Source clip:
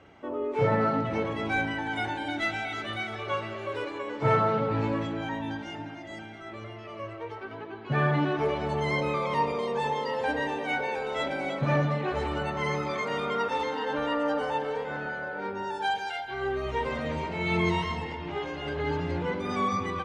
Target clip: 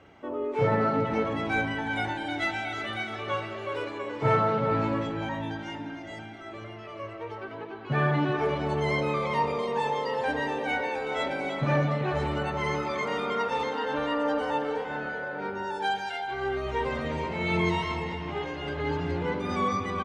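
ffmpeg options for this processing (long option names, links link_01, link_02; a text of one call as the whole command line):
ffmpeg -i in.wav -filter_complex "[0:a]asplit=2[link_01][link_02];[link_02]adelay=384.8,volume=-9dB,highshelf=frequency=4000:gain=-8.66[link_03];[link_01][link_03]amix=inputs=2:normalize=0" out.wav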